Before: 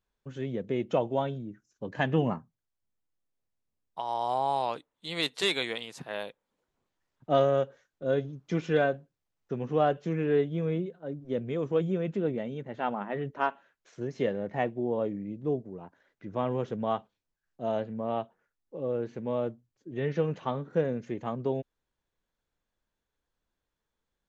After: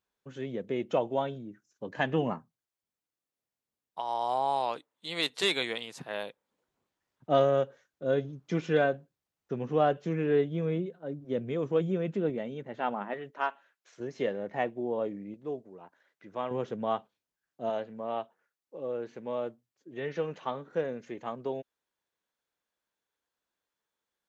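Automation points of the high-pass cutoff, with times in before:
high-pass 6 dB/octave
240 Hz
from 5.30 s 91 Hz
from 12.30 s 200 Hz
from 13.14 s 780 Hz
from 14.00 s 310 Hz
from 15.34 s 710 Hz
from 16.51 s 220 Hz
from 17.70 s 510 Hz

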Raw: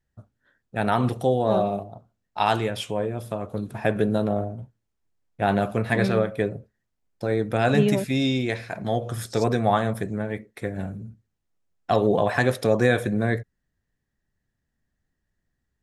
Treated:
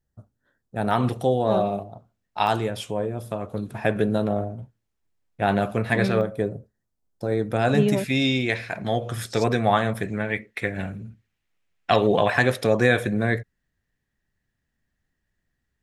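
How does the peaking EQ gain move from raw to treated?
peaking EQ 2.4 kHz 1.5 oct
-8.5 dB
from 0.91 s +2 dB
from 2.47 s -4 dB
from 3.32 s +2 dB
from 6.21 s -9 dB
from 7.32 s -2 dB
from 7.96 s +6.5 dB
from 10.04 s +13.5 dB
from 12.30 s +5 dB

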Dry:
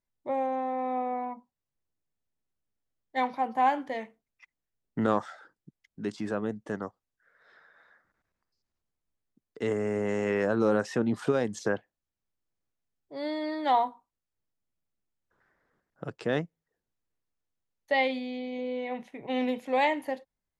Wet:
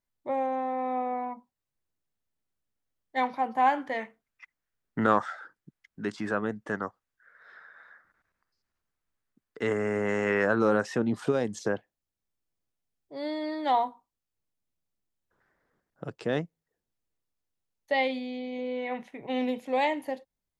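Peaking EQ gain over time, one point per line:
peaking EQ 1.5 kHz 1.3 oct
3.60 s +2 dB
4.02 s +8.5 dB
10.48 s +8.5 dB
11.14 s -2 dB
18.38 s -2 dB
18.93 s +6.5 dB
19.45 s -3.5 dB

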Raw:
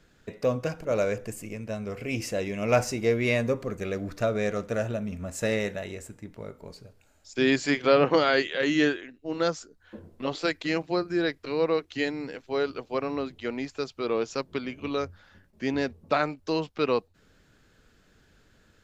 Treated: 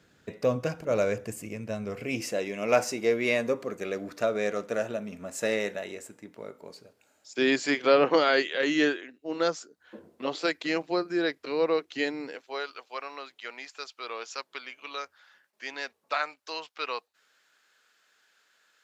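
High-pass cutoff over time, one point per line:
1.83 s 90 Hz
2.43 s 260 Hz
12.20 s 260 Hz
12.69 s 1 kHz

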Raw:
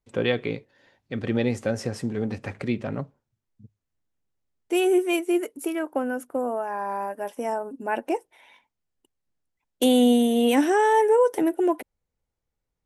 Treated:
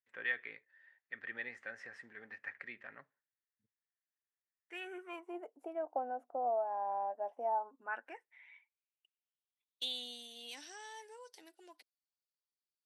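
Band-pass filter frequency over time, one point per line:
band-pass filter, Q 6.8
4.81 s 1.8 kHz
5.49 s 720 Hz
7.43 s 720 Hz
8.16 s 1.8 kHz
10.21 s 4.6 kHz

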